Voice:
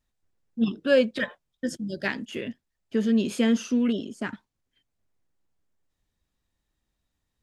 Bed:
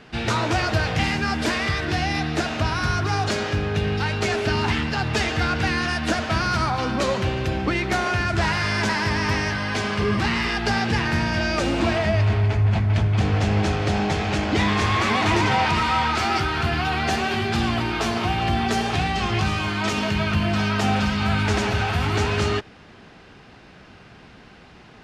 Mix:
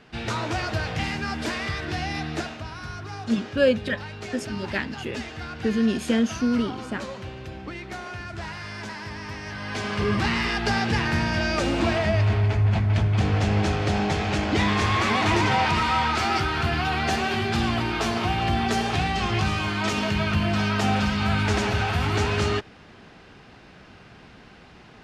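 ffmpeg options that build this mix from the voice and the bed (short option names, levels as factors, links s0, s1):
-filter_complex "[0:a]adelay=2700,volume=1.06[s0];[1:a]volume=2,afade=t=out:st=2.39:d=0.21:silence=0.421697,afade=t=in:st=9.41:d=0.69:silence=0.266073[s1];[s0][s1]amix=inputs=2:normalize=0"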